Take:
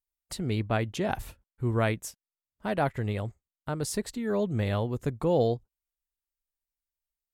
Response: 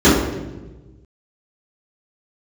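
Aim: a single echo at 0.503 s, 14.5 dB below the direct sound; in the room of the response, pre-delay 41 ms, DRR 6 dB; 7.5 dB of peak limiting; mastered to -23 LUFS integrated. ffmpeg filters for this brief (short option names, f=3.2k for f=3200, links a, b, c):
-filter_complex "[0:a]alimiter=limit=-21.5dB:level=0:latency=1,aecho=1:1:503:0.188,asplit=2[a][b];[1:a]atrim=start_sample=2205,adelay=41[c];[b][c]afir=irnorm=-1:irlink=0,volume=-34dB[d];[a][d]amix=inputs=2:normalize=0,volume=7dB"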